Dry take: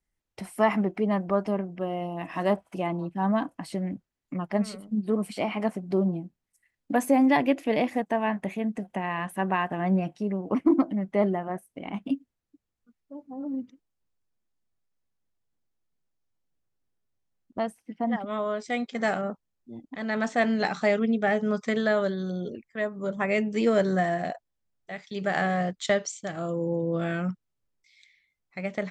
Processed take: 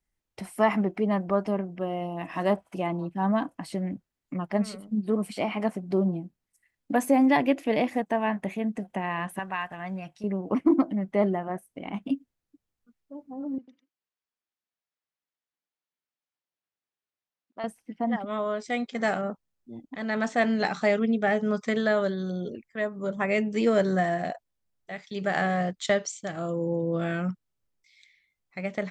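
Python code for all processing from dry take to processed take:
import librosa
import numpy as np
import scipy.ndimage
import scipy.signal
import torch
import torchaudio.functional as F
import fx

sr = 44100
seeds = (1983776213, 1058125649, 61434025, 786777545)

y = fx.chain(x, sr, fx.peak_eq(hz=310.0, db=-15.0, octaves=2.5),
    fx.notch(hz=3000.0, q=29.0), at=(9.39, 10.24))
y = fx.chain(y, sr, fx.highpass(hz=1400.0, slope=6),
    fx.air_absorb(metres=130.0),
    fx.echo_single(ms=96, db=-4.5), at=(13.58, 17.64))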